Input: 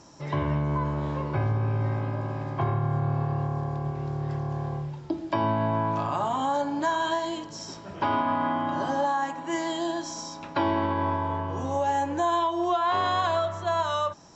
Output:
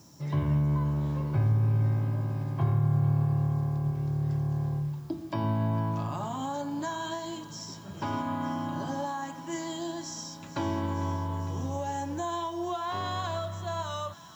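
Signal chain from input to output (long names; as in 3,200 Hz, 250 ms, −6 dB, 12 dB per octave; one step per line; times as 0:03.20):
high-pass filter 100 Hz
bass and treble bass +14 dB, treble +9 dB
background noise blue −58 dBFS
on a send: delay with a high-pass on its return 453 ms, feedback 79%, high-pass 1,400 Hz, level −14.5 dB
on the sum: level −9 dB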